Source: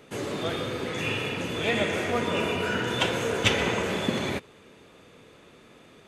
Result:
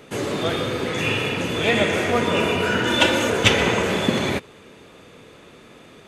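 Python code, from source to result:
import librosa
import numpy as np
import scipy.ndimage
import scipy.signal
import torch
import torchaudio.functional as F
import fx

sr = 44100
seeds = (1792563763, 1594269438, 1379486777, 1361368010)

y = fx.comb(x, sr, ms=3.4, depth=0.79, at=(2.85, 3.3))
y = y * librosa.db_to_amplitude(6.5)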